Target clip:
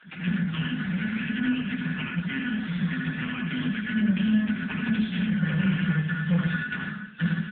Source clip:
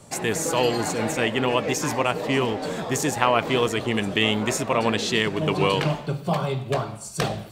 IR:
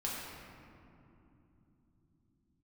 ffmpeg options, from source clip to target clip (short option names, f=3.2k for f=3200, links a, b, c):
-filter_complex "[0:a]aemphasis=mode=reproduction:type=50fm,aecho=1:1:6.4:0.74,acrossover=split=110|1500[a][b][c];[a]aeval=exprs='val(0)*sin(2*PI*1600*n/s)':c=same[d];[b]asuperpass=centerf=200:order=20:qfactor=2[e];[c]acompressor=threshold=-38dB:ratio=12[f];[d][e][f]amix=inputs=3:normalize=0,asettb=1/sr,asplit=3[g][h][i];[g]atrim=end=4.114[j];[h]atrim=start=4.11:end=5.56,asetpts=PTS-STARTPTS,afade=t=in:d=0.004:c=qsin,afade=t=out:st=1.446:d=0.004:c=qsin,aeval=exprs='0.133*(cos(1*acos(clip(val(0)/0.133,-1,1)))-cos(1*PI/2))+0.0119*(cos(4*acos(clip(val(0)/0.133,-1,1)))-cos(4*PI/2))+0.00531*(cos(6*acos(clip(val(0)/0.133,-1,1)))-cos(6*PI/2))':c=same[k];[i]atrim=start=5.556[l];[j][k]acrossfade=d=0.004:c1=hsin:c2=qsin[m];[m][l]acrossfade=d=0.004:c1=qsin:c2=hsin,asoftclip=type=tanh:threshold=-27dB,flanger=delay=0.4:depth=3.1:regen=-87:speed=1.4:shape=sinusoidal,aecho=1:1:78.72|110.8:0.562|0.398,acontrast=36,volume=7dB" -ar 8000 -c:a libopencore_amrnb -b:a 6700